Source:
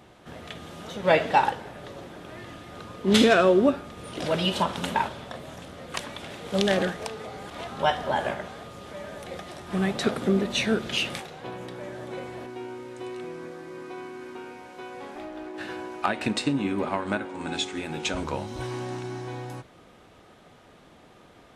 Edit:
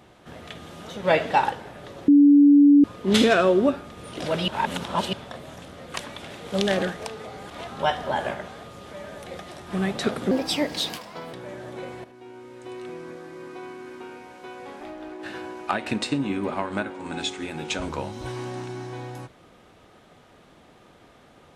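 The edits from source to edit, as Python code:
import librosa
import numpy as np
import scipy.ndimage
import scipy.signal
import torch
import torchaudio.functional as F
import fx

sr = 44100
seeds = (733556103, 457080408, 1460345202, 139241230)

y = fx.edit(x, sr, fx.bleep(start_s=2.08, length_s=0.76, hz=287.0, db=-10.0),
    fx.reverse_span(start_s=4.48, length_s=0.65),
    fx.speed_span(start_s=10.31, length_s=1.37, speed=1.34),
    fx.fade_in_from(start_s=12.39, length_s=0.85, floor_db=-12.0), tone=tone)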